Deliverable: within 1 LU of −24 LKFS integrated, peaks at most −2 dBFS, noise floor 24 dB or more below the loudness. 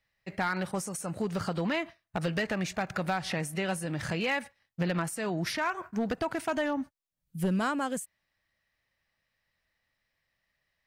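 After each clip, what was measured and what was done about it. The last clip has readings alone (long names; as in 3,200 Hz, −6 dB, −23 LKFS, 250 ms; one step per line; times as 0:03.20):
share of clipped samples 0.7%; peaks flattened at −22.5 dBFS; integrated loudness −32.0 LKFS; sample peak −22.5 dBFS; target loudness −24.0 LKFS
→ clipped peaks rebuilt −22.5 dBFS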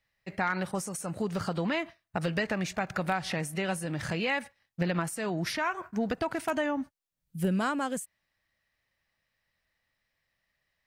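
share of clipped samples 0.0%; integrated loudness −32.0 LKFS; sample peak −15.0 dBFS; target loudness −24.0 LKFS
→ level +8 dB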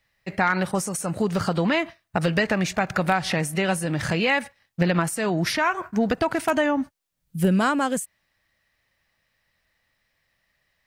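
integrated loudness −24.0 LKFS; sample peak −7.0 dBFS; background noise floor −73 dBFS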